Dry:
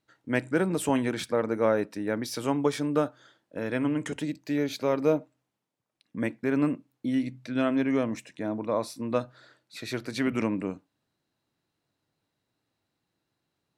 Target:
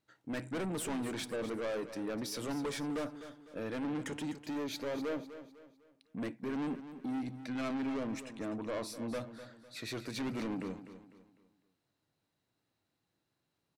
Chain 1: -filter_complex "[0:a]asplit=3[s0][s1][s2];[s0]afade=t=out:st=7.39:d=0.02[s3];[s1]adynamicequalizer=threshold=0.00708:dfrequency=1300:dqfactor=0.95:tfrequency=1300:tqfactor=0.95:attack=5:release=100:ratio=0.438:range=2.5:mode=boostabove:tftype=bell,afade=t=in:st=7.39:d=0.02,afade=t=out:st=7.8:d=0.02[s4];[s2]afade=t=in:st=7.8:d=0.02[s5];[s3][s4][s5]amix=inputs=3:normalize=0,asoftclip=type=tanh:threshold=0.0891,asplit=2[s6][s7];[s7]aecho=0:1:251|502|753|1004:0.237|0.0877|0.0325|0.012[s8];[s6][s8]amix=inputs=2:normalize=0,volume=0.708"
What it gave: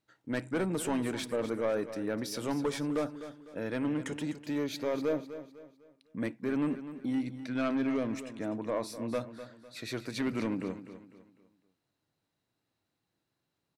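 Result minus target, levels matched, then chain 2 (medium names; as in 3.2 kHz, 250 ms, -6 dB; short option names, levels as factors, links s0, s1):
saturation: distortion -7 dB
-filter_complex "[0:a]asplit=3[s0][s1][s2];[s0]afade=t=out:st=7.39:d=0.02[s3];[s1]adynamicequalizer=threshold=0.00708:dfrequency=1300:dqfactor=0.95:tfrequency=1300:tqfactor=0.95:attack=5:release=100:ratio=0.438:range=2.5:mode=boostabove:tftype=bell,afade=t=in:st=7.39:d=0.02,afade=t=out:st=7.8:d=0.02[s4];[s2]afade=t=in:st=7.8:d=0.02[s5];[s3][s4][s5]amix=inputs=3:normalize=0,asoftclip=type=tanh:threshold=0.0299,asplit=2[s6][s7];[s7]aecho=0:1:251|502|753|1004:0.237|0.0877|0.0325|0.012[s8];[s6][s8]amix=inputs=2:normalize=0,volume=0.708"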